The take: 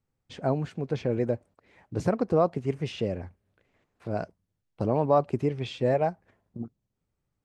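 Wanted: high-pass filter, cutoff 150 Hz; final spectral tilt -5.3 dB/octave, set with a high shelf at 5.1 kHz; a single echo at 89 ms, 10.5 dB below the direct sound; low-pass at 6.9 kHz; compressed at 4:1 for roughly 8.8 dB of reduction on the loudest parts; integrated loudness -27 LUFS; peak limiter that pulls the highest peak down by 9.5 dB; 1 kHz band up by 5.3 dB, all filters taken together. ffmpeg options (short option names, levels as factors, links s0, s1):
-af "highpass=150,lowpass=6900,equalizer=f=1000:t=o:g=7.5,highshelf=f=5100:g=4.5,acompressor=threshold=0.0631:ratio=4,alimiter=limit=0.0794:level=0:latency=1,aecho=1:1:89:0.299,volume=2.51"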